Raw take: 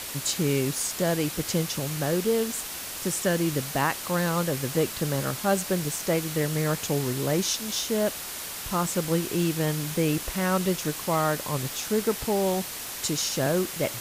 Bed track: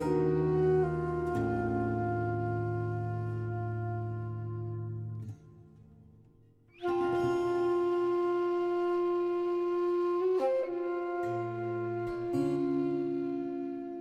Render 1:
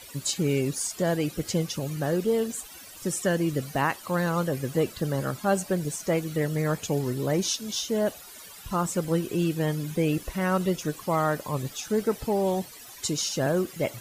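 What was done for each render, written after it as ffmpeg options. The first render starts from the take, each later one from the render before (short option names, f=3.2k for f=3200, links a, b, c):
-af "afftdn=nr=15:nf=-36"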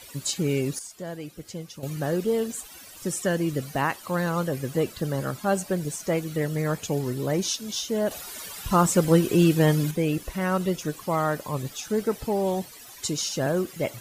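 -filter_complex "[0:a]asplit=5[a][b][c][d][e];[a]atrim=end=0.792[f];[b]atrim=start=0.788:end=1.832,asetpts=PTS-STARTPTS,volume=-10dB[g];[c]atrim=start=1.828:end=8.112[h];[d]atrim=start=8.108:end=9.912,asetpts=PTS-STARTPTS,volume=7dB[i];[e]atrim=start=9.908[j];[f][g]acrossfade=d=0.004:c1=hsin:c2=hsin[k];[k][h]acrossfade=d=0.004:c1=hsin:c2=hsin[l];[l][i]acrossfade=d=0.004:c1=hsin:c2=hsin[m];[m][j]acrossfade=d=0.004:c1=hsin:c2=hsin"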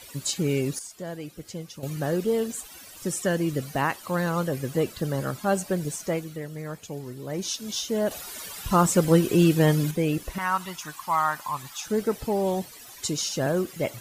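-filter_complex "[0:a]asettb=1/sr,asplit=3[a][b][c];[a]atrim=end=10.384[d];[b]atrim=start=10.38:end=11.85,asetpts=PTS-STARTPTS,afade=t=in:d=0.004:c=qsin,afade=t=out:st=1.466:d=0.004:c=qsin,lowshelf=f=680:t=q:w=3:g=-11[e];[c]atrim=start=11.846[f];[d][e]acrossfade=d=0.004:c1=hsin:c2=qsin[g];[g][f]acrossfade=d=0.004:c1=qsin:c2=hsin,asplit=3[h][i][j];[h]atrim=end=6.41,asetpts=PTS-STARTPTS,afade=t=out:st=5.98:d=0.43:silence=0.354813[k];[i]atrim=start=6.41:end=7.25,asetpts=PTS-STARTPTS,volume=-9dB[l];[j]atrim=start=7.25,asetpts=PTS-STARTPTS,afade=t=in:d=0.43:silence=0.354813[m];[k][l][m]concat=n=3:v=0:a=1"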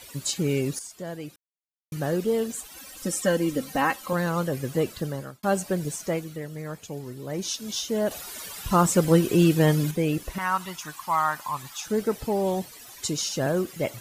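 -filter_complex "[0:a]asettb=1/sr,asplit=3[a][b][c];[a]atrim=end=2.764[d];[b]atrim=start=2.76:end=4.13,asetpts=PTS-STARTPTS,afade=t=in:d=0.004:c=qsin,afade=t=out:st=1.366:d=0.004:c=qsin,aecho=1:1:3.8:0.74,atrim=end_sample=60417[e];[c]atrim=start=4.126[f];[d][e]acrossfade=d=0.004:c1=hsin:c2=qsin[g];[g][f]acrossfade=d=0.004:c1=qsin:c2=hsin,asplit=4[h][i][j][k];[h]atrim=end=1.36,asetpts=PTS-STARTPTS,afade=t=out:st=1.356:d=0.004:c=hsin[l];[i]atrim=start=1.36:end=1.92,asetpts=PTS-STARTPTS,volume=0[m];[j]atrim=start=1.92:end=5.43,asetpts=PTS-STARTPTS,afade=t=in:d=0.004:c=hsin,afade=t=out:st=3.04:d=0.47[n];[k]atrim=start=5.43,asetpts=PTS-STARTPTS,afade=t=in:d=0.004:c=hsin[o];[l][m][n][o]concat=n=4:v=0:a=1"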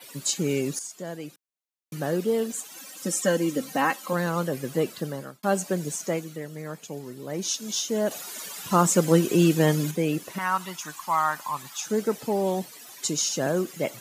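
-af "adynamicequalizer=threshold=0.00447:dfrequency=6700:dqfactor=3.7:tfrequency=6700:tqfactor=3.7:attack=5:release=100:ratio=0.375:range=3:mode=boostabove:tftype=bell,highpass=f=150:w=0.5412,highpass=f=150:w=1.3066"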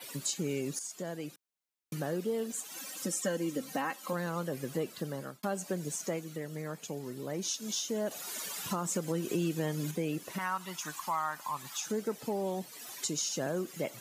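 -af "alimiter=limit=-12.5dB:level=0:latency=1:release=192,acompressor=threshold=-37dB:ratio=2"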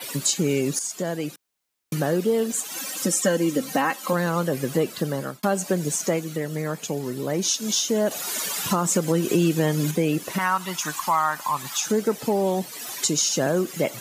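-af "volume=11.5dB"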